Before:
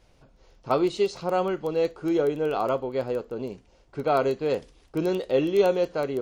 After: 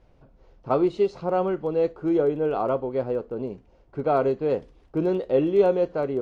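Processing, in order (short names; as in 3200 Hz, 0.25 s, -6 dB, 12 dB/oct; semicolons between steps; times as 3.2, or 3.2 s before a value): LPF 1000 Hz 6 dB/oct; gain +2.5 dB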